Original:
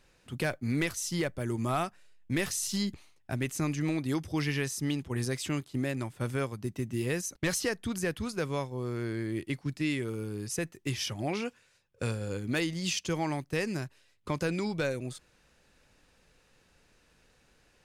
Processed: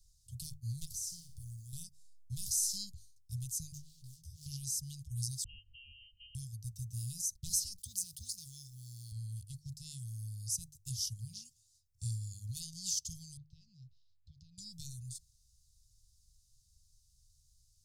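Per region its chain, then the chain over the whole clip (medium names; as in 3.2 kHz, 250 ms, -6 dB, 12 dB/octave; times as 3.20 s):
0.85–1.73 s: compression, threshold -38 dBFS + short-mantissa float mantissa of 4-bit + flutter echo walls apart 10.1 m, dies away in 0.44 s
3.72–4.46 s: hard clipper -38 dBFS + detune thickener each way 17 cents
5.44–6.35 s: companding laws mixed up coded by mu + frequency inversion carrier 3 kHz + comb 3.6 ms, depth 55%
7.78–9.12 s: companding laws mixed up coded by A + high-pass 360 Hz 6 dB/octave + level flattener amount 50%
13.37–14.58 s: low-pass 3.9 kHz 24 dB/octave + compression 2.5:1, threshold -46 dBFS
whole clip: inverse Chebyshev band-stop 310–1800 Hz, stop band 60 dB; peaking EQ 2.3 kHz -13 dB 0.39 oct; hum notches 50/100/150 Hz; trim +2 dB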